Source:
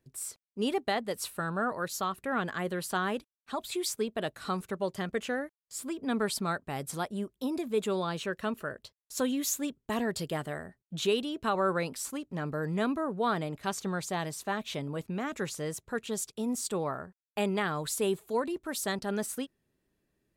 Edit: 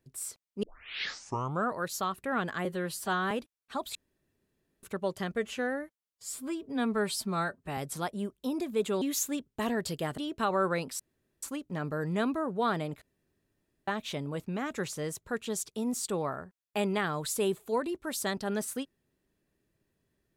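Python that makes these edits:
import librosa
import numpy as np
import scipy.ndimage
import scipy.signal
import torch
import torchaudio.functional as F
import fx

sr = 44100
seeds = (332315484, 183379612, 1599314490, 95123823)

y = fx.edit(x, sr, fx.tape_start(start_s=0.63, length_s=1.05),
    fx.stretch_span(start_s=2.65, length_s=0.44, factor=1.5),
    fx.room_tone_fill(start_s=3.73, length_s=0.88),
    fx.stretch_span(start_s=5.14, length_s=1.61, factor=1.5),
    fx.cut(start_s=7.99, length_s=1.33),
    fx.cut(start_s=10.48, length_s=0.74),
    fx.insert_room_tone(at_s=12.04, length_s=0.43),
    fx.room_tone_fill(start_s=13.63, length_s=0.86), tone=tone)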